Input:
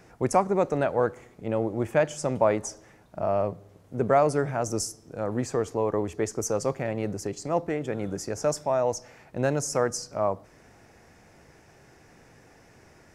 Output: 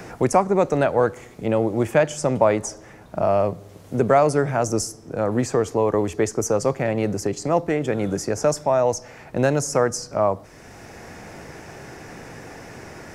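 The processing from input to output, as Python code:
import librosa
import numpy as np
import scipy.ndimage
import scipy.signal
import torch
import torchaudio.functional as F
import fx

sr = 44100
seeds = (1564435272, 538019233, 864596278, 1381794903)

y = fx.band_squash(x, sr, depth_pct=40)
y = y * 10.0 ** (6.0 / 20.0)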